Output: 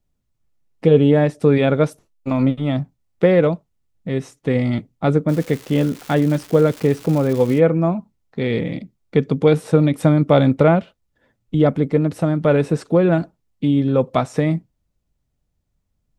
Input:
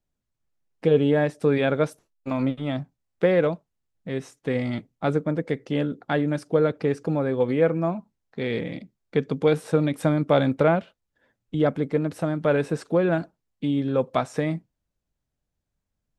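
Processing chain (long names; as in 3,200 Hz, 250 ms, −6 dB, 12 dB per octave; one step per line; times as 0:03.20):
low-shelf EQ 240 Hz +7 dB
notch filter 1,600 Hz, Q 14
0:05.28–0:07.58: surface crackle 530 per second −31 dBFS
level +4 dB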